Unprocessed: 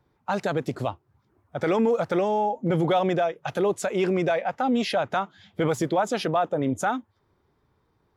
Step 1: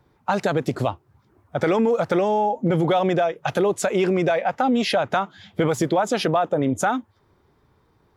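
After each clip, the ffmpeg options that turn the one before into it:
-af "acompressor=threshold=-25dB:ratio=2.5,volume=7dB"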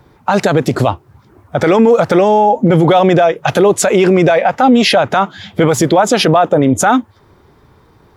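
-af "alimiter=level_in=15dB:limit=-1dB:release=50:level=0:latency=1,volume=-1dB"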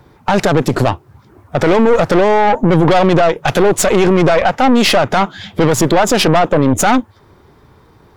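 -af "aeval=exprs='(tanh(3.55*val(0)+0.6)-tanh(0.6))/3.55':c=same,volume=4dB"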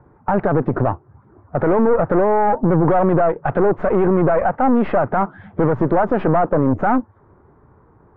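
-af "lowpass=f=1.5k:w=0.5412,lowpass=f=1.5k:w=1.3066,volume=-4.5dB"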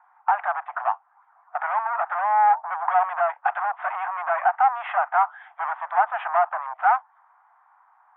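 -af "asuperpass=centerf=1600:order=20:qfactor=0.57,volume=1dB"

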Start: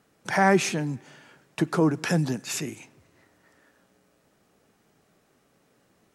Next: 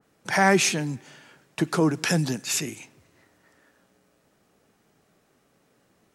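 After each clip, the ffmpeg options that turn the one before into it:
-af "adynamicequalizer=threshold=0.01:dfrequency=2000:dqfactor=0.7:tfrequency=2000:tqfactor=0.7:attack=5:release=100:ratio=0.375:range=3.5:mode=boostabove:tftype=highshelf"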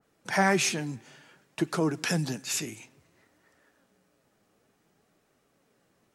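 -af "flanger=delay=1.3:depth=8.7:regen=67:speed=0.56:shape=triangular"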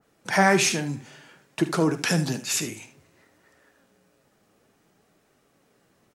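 -af "aecho=1:1:48|76:0.168|0.211,volume=4.5dB"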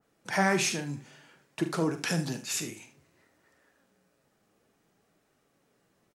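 -filter_complex "[0:a]asplit=2[a][b];[b]adelay=42,volume=-12dB[c];[a][c]amix=inputs=2:normalize=0,volume=-6.5dB"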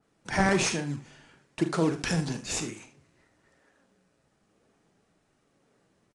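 -filter_complex "[0:a]asplit=2[a][b];[b]acrusher=samples=41:mix=1:aa=0.000001:lfo=1:lforange=65.6:lforate=1,volume=-7dB[c];[a][c]amix=inputs=2:normalize=0,aresample=22050,aresample=44100"

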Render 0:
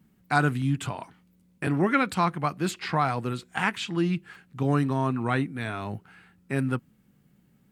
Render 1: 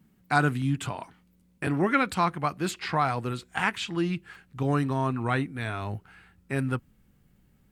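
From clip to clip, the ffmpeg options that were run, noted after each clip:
-af "asubboost=boost=6:cutoff=67"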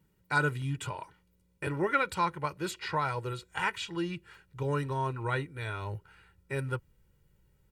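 -af "aecho=1:1:2.1:0.77,volume=-6dB"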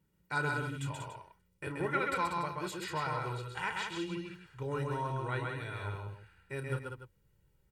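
-af "aecho=1:1:32.07|131.2|189.5|288.6:0.316|0.708|0.501|0.251,volume=-6dB"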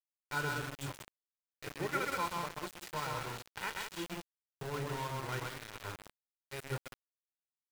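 -af "aeval=exprs='val(0)*gte(abs(val(0)),0.0178)':c=same,volume=-2.5dB"

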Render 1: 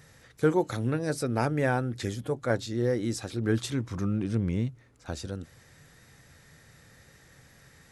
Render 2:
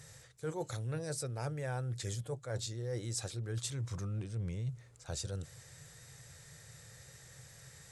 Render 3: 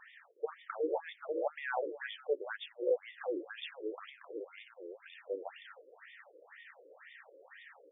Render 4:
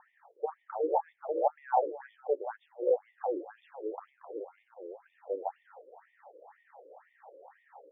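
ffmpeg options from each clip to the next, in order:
-af "equalizer=f=125:t=o:w=1:g=10,equalizer=f=250:t=o:w=1:g=-12,equalizer=f=500:t=o:w=1:g=5,equalizer=f=4k:t=o:w=1:g=3,equalizer=f=8k:t=o:w=1:g=12,areverse,acompressor=threshold=-31dB:ratio=10,areverse,volume=-4dB"
-af "aecho=1:1:366:0.708,afftfilt=real='re*between(b*sr/1024,400*pow(2600/400,0.5+0.5*sin(2*PI*2*pts/sr))/1.41,400*pow(2600/400,0.5+0.5*sin(2*PI*2*pts/sr))*1.41)':imag='im*between(b*sr/1024,400*pow(2600/400,0.5+0.5*sin(2*PI*2*pts/sr))/1.41,400*pow(2600/400,0.5+0.5*sin(2*PI*2*pts/sr))*1.41)':win_size=1024:overlap=0.75,volume=9.5dB"
-af "lowpass=f=820:t=q:w=4.9"

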